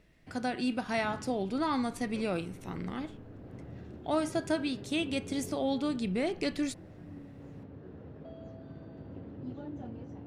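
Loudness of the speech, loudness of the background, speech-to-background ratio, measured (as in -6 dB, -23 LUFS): -33.5 LUFS, -47.0 LUFS, 13.5 dB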